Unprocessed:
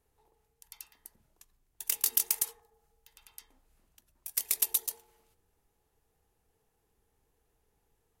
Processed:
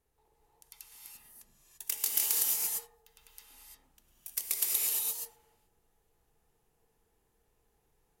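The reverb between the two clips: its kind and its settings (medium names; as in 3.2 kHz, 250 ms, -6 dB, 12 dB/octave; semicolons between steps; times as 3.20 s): gated-style reverb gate 370 ms rising, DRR -3.5 dB; trim -3.5 dB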